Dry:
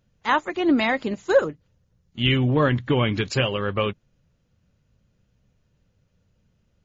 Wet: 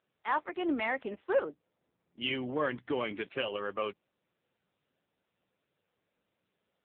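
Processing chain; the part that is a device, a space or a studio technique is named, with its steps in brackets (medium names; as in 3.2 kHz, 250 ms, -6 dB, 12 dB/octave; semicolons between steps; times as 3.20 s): 1.49–2.76 s: level-controlled noise filter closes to 540 Hz, open at -18.5 dBFS; telephone (band-pass 340–3500 Hz; saturation -12 dBFS, distortion -18 dB; trim -7 dB; AMR-NB 6.7 kbps 8 kHz)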